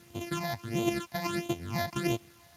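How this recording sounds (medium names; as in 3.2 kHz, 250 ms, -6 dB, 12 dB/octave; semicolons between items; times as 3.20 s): a buzz of ramps at a fixed pitch in blocks of 128 samples; phasing stages 8, 1.5 Hz, lowest notch 360–1600 Hz; a quantiser's noise floor 10-bit, dither triangular; Speex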